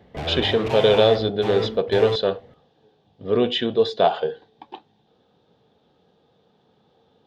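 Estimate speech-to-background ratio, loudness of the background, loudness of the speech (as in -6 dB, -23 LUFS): 8.5 dB, -29.0 LUFS, -20.5 LUFS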